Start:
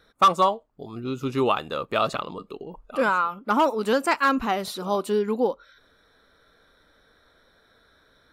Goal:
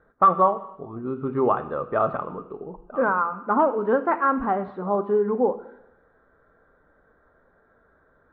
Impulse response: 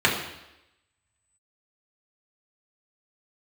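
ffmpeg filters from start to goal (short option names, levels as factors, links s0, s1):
-filter_complex "[0:a]lowpass=f=1500:w=0.5412,lowpass=f=1500:w=1.3066,asplit=2[s0][s1];[1:a]atrim=start_sample=2205,highshelf=f=3900:g=11.5[s2];[s1][s2]afir=irnorm=-1:irlink=0,volume=0.0501[s3];[s0][s3]amix=inputs=2:normalize=0"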